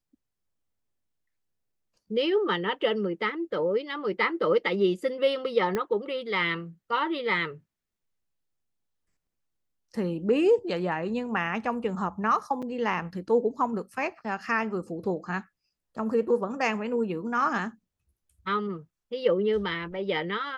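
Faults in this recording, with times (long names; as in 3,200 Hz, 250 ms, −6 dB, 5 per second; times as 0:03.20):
0:05.75: click −15 dBFS
0:12.62–0:12.63: drop-out 6 ms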